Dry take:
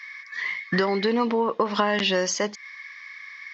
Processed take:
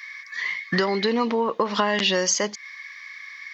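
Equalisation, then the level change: high shelf 5600 Hz +11 dB; notch 5200 Hz, Q 20; 0.0 dB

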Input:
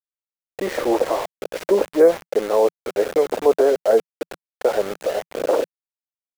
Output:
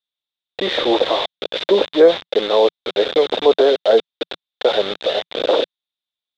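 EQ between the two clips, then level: synth low-pass 3600 Hz, resonance Q 11; low shelf 68 Hz -7 dB; +2.5 dB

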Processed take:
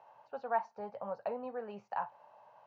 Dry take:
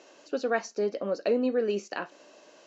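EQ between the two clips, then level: double band-pass 320 Hz, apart 2.9 oct; air absorption 110 m; +9.5 dB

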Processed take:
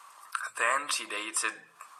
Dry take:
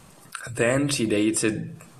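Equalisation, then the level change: resonant high-pass 1100 Hz, resonance Q 4.9; -4.5 dB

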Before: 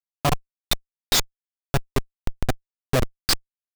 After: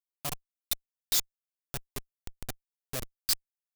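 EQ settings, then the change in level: pre-emphasis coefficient 0.8; -4.5 dB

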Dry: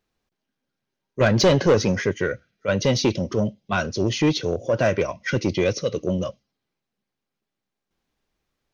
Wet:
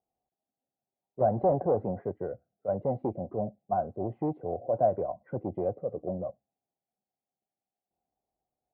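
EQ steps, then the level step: HPF 52 Hz; ladder low-pass 780 Hz, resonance 80%; air absorption 320 m; 0.0 dB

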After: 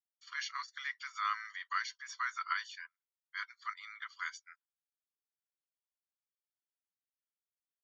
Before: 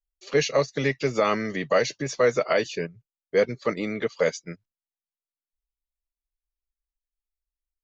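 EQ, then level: polynomial smoothing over 41 samples; rippled Chebyshev high-pass 980 Hz, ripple 6 dB; differentiator; +12.0 dB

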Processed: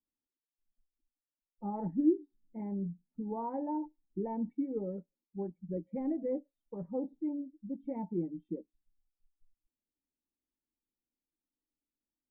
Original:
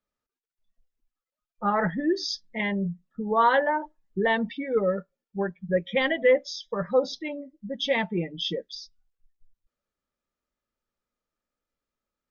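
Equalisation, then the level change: vocal tract filter u; Butterworth band-stop 3400 Hz, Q 6.9; low shelf 170 Hz +5.5 dB; 0.0 dB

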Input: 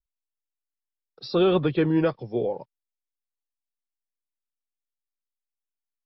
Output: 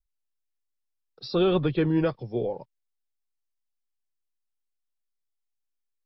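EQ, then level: low shelf 90 Hz +12 dB; bell 4800 Hz +2.5 dB 1.4 oct; -3.0 dB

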